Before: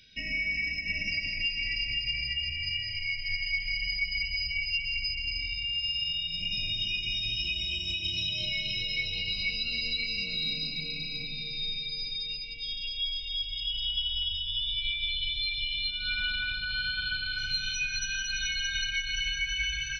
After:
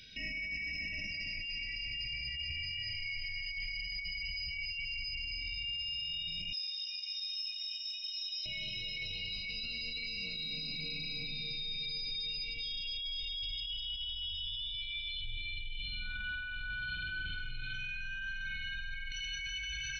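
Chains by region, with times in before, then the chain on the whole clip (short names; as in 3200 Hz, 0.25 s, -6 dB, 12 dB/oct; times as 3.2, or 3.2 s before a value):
6.53–8.46 band-pass 5200 Hz, Q 6 + frequency shift -30 Hz
15.21–19.12 air absorption 480 m + flutter echo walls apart 8.1 m, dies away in 1.3 s
whole clip: negative-ratio compressor -36 dBFS, ratio -1; limiter -31 dBFS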